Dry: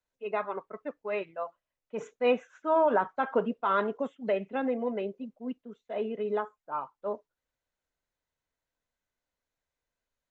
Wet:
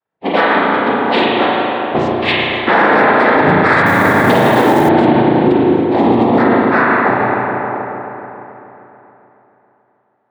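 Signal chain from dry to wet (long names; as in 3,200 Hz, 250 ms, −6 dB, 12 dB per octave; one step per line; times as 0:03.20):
noise reduction from a noise print of the clip's start 14 dB
in parallel at −1 dB: downward compressor, threshold −37 dBFS, peak gain reduction 16 dB
on the sum: cochlear-implant simulation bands 6
0:02.12–0:02.68: inverse Chebyshev band-stop filter 210–600 Hz, stop band 60 dB
spring reverb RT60 3.4 s, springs 33/39 ms, chirp 20 ms, DRR −6 dB
low-pass that shuts in the quiet parts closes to 1,800 Hz, open at −16.5 dBFS
dynamic equaliser 590 Hz, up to −4 dB, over −35 dBFS, Q 0.88
0:03.86–0:04.89: log-companded quantiser 6 bits
boost into a limiter +19 dB
level −1 dB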